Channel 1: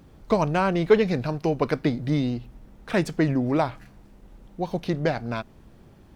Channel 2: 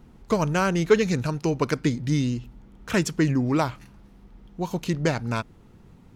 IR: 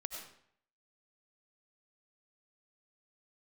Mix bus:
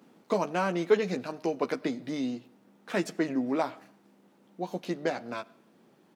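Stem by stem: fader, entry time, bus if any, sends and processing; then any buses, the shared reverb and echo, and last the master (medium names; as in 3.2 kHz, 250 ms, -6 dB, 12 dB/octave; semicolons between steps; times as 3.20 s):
-7.0 dB, 0.00 s, send -15.5 dB, none
-2.5 dB, 13 ms, polarity flipped, no send, auto duck -11 dB, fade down 0.50 s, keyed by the first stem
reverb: on, RT60 0.65 s, pre-delay 55 ms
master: high-pass 200 Hz 24 dB/octave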